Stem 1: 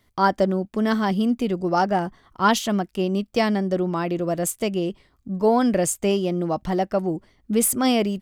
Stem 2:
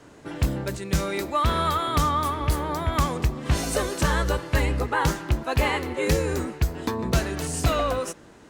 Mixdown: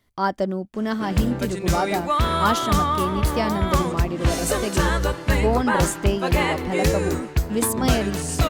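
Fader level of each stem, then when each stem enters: -3.5, +2.0 dB; 0.00, 0.75 s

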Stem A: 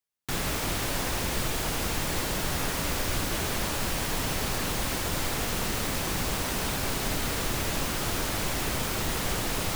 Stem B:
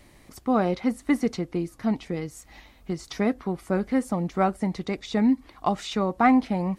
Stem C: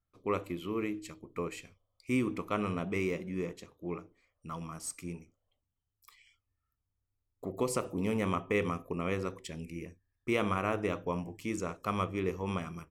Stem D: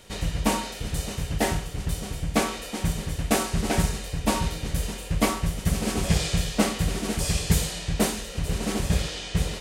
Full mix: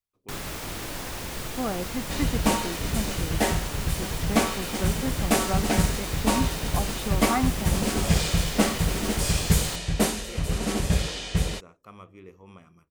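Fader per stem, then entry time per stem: -5.0, -7.5, -14.0, +0.5 dB; 0.00, 1.10, 0.00, 2.00 s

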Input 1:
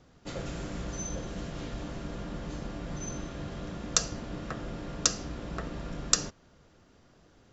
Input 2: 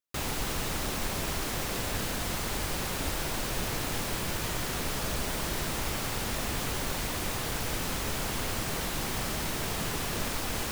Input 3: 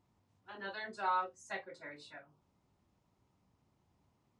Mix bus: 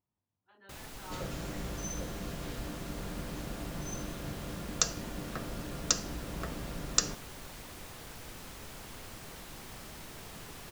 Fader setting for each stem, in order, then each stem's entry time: -2.5, -14.5, -15.0 dB; 0.85, 0.55, 0.00 s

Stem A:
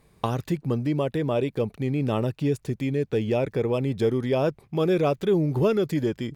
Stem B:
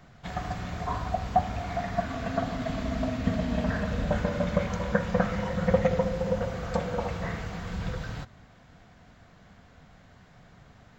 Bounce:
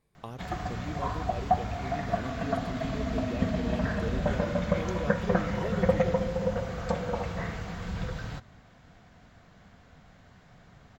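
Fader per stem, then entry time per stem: -15.0, -1.0 dB; 0.00, 0.15 s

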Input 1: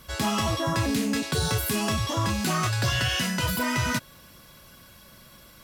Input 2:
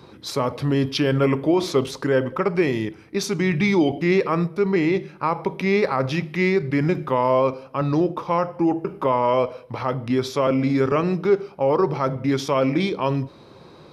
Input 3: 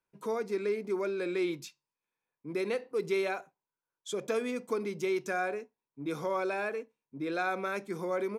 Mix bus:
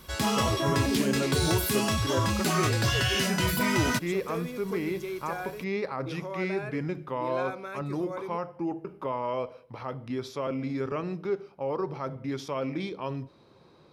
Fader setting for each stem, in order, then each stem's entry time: -1.0, -11.5, -5.0 dB; 0.00, 0.00, 0.00 s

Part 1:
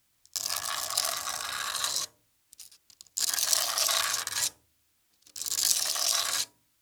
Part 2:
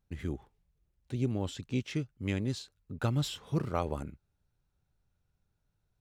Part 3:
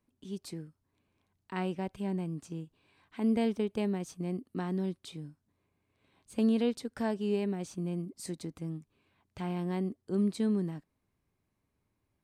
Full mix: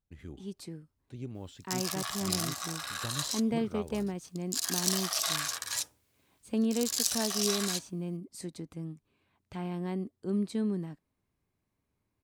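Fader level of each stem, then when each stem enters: -4.5, -9.5, -1.5 dB; 1.35, 0.00, 0.15 s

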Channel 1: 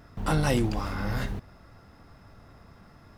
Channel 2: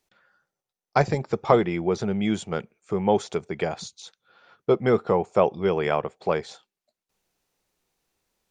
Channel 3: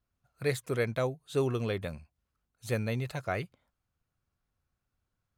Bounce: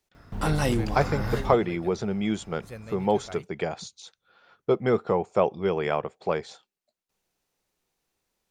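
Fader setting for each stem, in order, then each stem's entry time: 0.0, -2.5, -10.0 dB; 0.15, 0.00, 0.00 s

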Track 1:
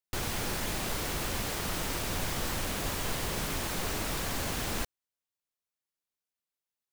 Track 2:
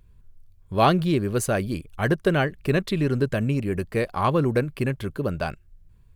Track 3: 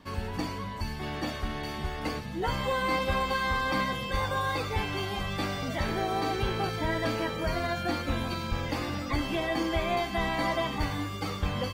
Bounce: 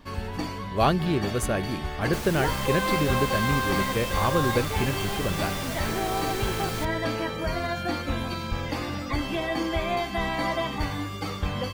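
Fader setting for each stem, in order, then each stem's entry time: -1.5, -3.5, +1.5 dB; 2.00, 0.00, 0.00 s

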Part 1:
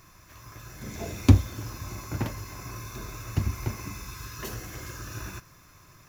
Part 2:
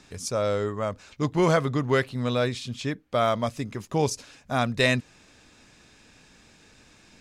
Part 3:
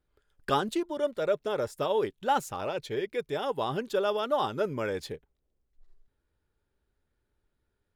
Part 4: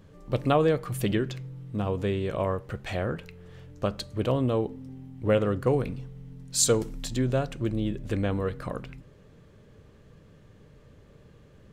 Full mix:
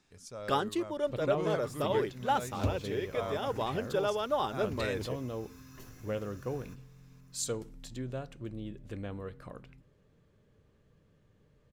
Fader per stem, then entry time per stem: -16.5, -17.0, -3.0, -12.5 dB; 1.35, 0.00, 0.00, 0.80 s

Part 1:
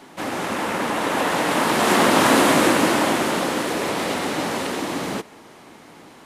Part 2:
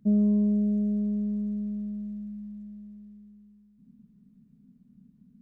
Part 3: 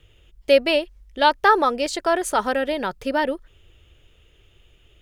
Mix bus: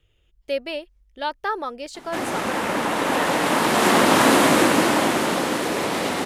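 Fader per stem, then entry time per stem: 0.0 dB, off, -10.0 dB; 1.95 s, off, 0.00 s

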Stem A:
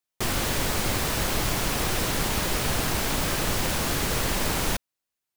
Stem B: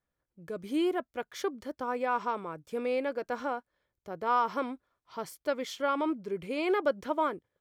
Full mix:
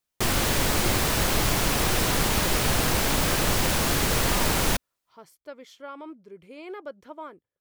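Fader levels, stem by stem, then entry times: +2.5, -10.5 dB; 0.00, 0.00 s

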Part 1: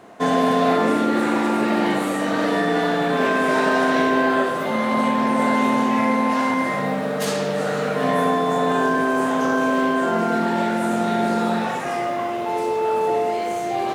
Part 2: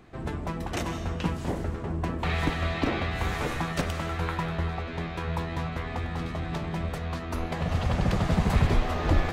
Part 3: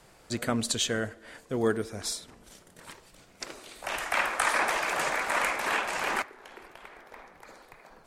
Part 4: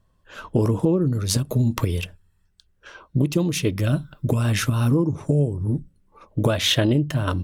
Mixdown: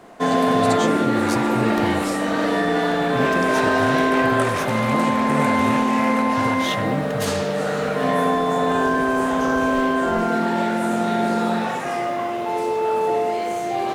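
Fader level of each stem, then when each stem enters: 0.0, -17.0, -4.0, -8.5 dB; 0.00, 1.00, 0.00, 0.00 s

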